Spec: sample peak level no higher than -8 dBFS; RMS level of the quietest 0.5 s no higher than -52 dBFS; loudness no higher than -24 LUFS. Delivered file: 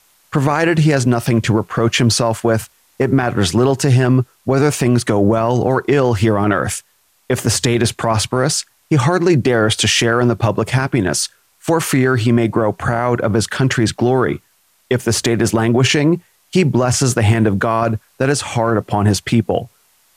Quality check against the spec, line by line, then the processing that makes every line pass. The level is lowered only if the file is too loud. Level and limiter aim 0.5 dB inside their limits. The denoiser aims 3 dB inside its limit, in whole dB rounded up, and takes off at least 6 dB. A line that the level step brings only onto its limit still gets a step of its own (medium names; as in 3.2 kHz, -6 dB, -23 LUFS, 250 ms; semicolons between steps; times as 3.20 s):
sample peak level -4.0 dBFS: fail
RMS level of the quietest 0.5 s -58 dBFS: pass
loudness -16.0 LUFS: fail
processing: trim -8.5 dB